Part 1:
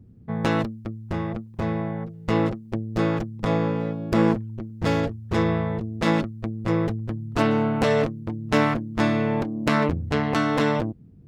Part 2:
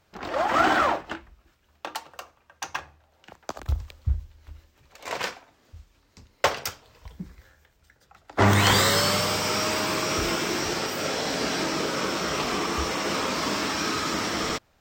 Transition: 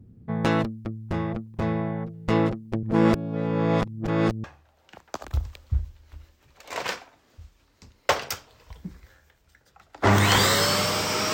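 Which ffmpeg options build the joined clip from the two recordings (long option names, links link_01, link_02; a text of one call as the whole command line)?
ffmpeg -i cue0.wav -i cue1.wav -filter_complex "[0:a]apad=whole_dur=11.33,atrim=end=11.33,asplit=2[link_01][link_02];[link_01]atrim=end=2.832[link_03];[link_02]atrim=start=2.828:end=4.442,asetpts=PTS-STARTPTS,areverse[link_04];[1:a]atrim=start=2.788:end=9.68[link_05];[link_03][link_04]acrossfade=duration=0.004:curve1=hsin:curve2=hsin[link_06];[link_06][link_05]acrossfade=duration=0.004:curve1=hsin:curve2=hsin" out.wav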